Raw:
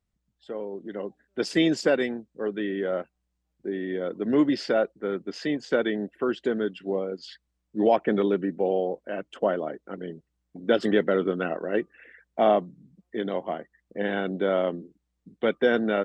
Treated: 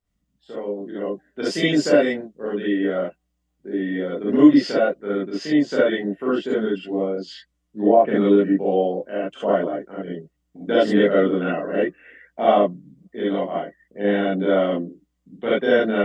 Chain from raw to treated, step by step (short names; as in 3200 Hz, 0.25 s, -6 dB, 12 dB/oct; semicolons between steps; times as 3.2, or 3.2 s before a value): 7.01–8.01 treble ducked by the level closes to 890 Hz, closed at -15.5 dBFS; non-linear reverb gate 90 ms rising, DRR -8 dB; gain -4 dB